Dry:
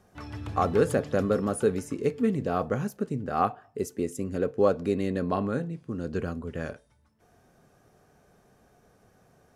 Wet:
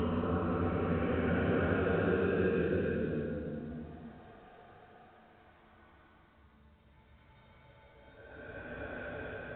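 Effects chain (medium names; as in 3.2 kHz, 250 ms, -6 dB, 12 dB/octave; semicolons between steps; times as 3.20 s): slices played last to first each 84 ms, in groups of 8; bass shelf 380 Hz -6 dB; compression 4:1, threshold -36 dBFS, peak gain reduction 14.5 dB; Paulstretch 9.1×, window 0.25 s, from 6.33 s; trim +9 dB; µ-law 64 kbps 8 kHz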